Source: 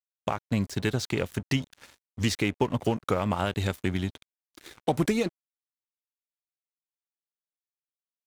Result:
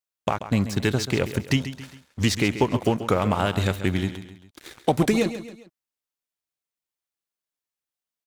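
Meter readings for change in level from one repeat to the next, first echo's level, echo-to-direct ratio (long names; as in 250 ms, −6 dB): −7.0 dB, −12.0 dB, −11.0 dB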